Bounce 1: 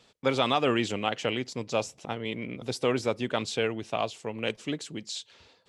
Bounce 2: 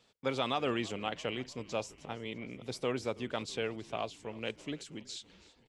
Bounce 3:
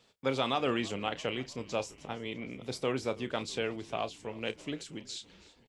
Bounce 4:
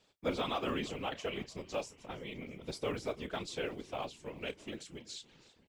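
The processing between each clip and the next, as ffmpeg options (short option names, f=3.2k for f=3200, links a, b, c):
-filter_complex "[0:a]asplit=6[a][b][c][d][e][f];[b]adelay=327,afreqshift=-49,volume=-21dB[g];[c]adelay=654,afreqshift=-98,volume=-25dB[h];[d]adelay=981,afreqshift=-147,volume=-29dB[i];[e]adelay=1308,afreqshift=-196,volume=-33dB[j];[f]adelay=1635,afreqshift=-245,volume=-37.1dB[k];[a][g][h][i][j][k]amix=inputs=6:normalize=0,volume=-7.5dB"
-filter_complex "[0:a]asplit=2[a][b];[b]adelay=30,volume=-13dB[c];[a][c]amix=inputs=2:normalize=0,volume=2dB"
-af "acrusher=bits=9:mode=log:mix=0:aa=0.000001,afftfilt=real='hypot(re,im)*cos(2*PI*random(0))':imag='hypot(re,im)*sin(2*PI*random(1))':win_size=512:overlap=0.75,volume=1.5dB"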